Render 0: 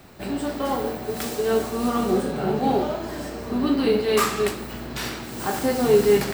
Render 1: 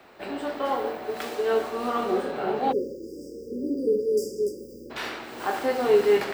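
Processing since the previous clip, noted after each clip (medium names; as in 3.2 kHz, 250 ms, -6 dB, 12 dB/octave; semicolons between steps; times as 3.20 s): three-band isolator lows -18 dB, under 320 Hz, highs -13 dB, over 3.8 kHz; spectral selection erased 2.72–4.91 s, 570–4700 Hz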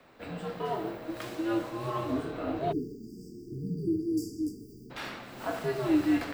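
frequency shift -110 Hz; trim -6 dB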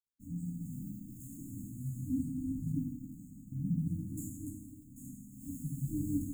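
crossover distortion -48 dBFS; brick-wall FIR band-stop 290–6500 Hz; plate-style reverb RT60 1.4 s, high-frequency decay 0.9×, DRR 1 dB; trim +1 dB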